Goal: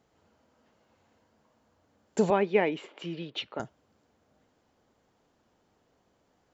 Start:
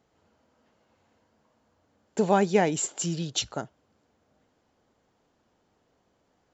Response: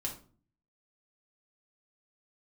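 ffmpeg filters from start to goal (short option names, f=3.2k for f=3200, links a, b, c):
-filter_complex "[0:a]asettb=1/sr,asplit=3[a][b][c];[a]atrim=end=2.304[d];[b]atrim=start=2.3:end=3.6,asetpts=PTS-STARTPTS,afade=t=in:d=0.004:c=qsin,afade=t=out:st=1.296:d=0.004:c=qsin,highpass=290,equalizer=f=740:t=q:w=4:g=-7,equalizer=f=1.5k:t=q:w=4:g=-6,equalizer=f=2.3k:t=q:w=4:g=4,lowpass=f=3k:w=0.5412,lowpass=f=3k:w=1.3066[e];[c]atrim=start=3.596[f];[d][e]acrossfade=d=0.004:c1=hsin:c2=qsin[g];[g][f]acrossfade=d=0.004:c1=qsin:c2=hsin"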